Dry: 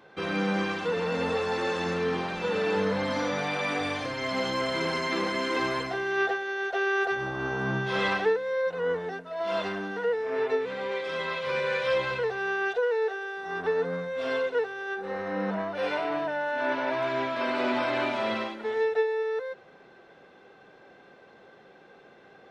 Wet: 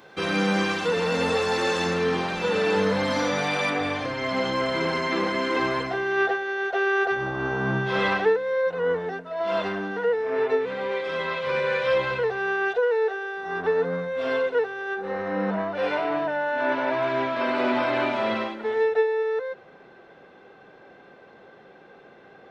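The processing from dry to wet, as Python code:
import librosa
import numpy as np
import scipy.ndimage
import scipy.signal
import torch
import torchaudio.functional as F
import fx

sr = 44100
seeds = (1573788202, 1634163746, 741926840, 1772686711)

y = fx.high_shelf(x, sr, hz=4800.0, db=fx.steps((0.0, 10.0), (1.86, 5.0), (3.69, -9.0)))
y = y * 10.0 ** (4.0 / 20.0)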